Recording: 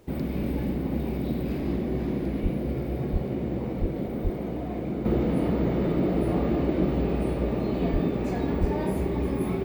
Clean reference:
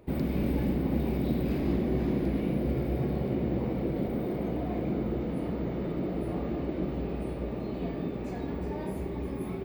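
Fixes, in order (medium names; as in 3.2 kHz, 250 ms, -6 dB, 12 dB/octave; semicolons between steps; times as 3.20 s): de-plosive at 2.42/3.12/3.80/4.23/7.92/8.60 s; expander -23 dBFS, range -21 dB; trim 0 dB, from 5.05 s -7.5 dB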